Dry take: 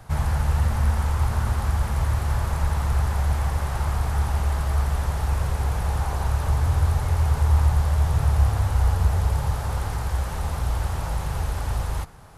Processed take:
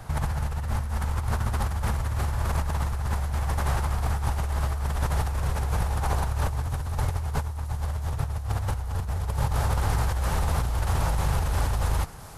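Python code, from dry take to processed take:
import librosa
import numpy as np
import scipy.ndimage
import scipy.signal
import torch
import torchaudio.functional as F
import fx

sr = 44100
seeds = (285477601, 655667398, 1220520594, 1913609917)

y = fx.over_compress(x, sr, threshold_db=-26.0, ratio=-1.0)
y = fx.echo_wet_highpass(y, sr, ms=665, feedback_pct=60, hz=4800.0, wet_db=-11.5)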